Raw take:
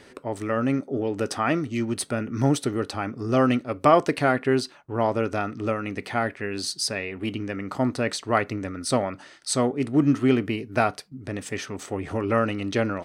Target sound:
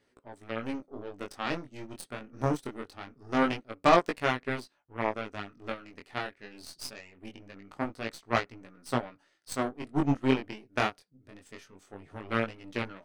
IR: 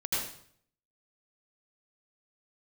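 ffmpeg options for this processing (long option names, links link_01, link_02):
-af "aeval=exprs='0.668*(cos(1*acos(clip(val(0)/0.668,-1,1)))-cos(1*PI/2))+0.0376*(cos(6*acos(clip(val(0)/0.668,-1,1)))-cos(6*PI/2))+0.0841*(cos(7*acos(clip(val(0)/0.668,-1,1)))-cos(7*PI/2))':channel_layout=same,flanger=delay=16.5:depth=7.4:speed=0.23"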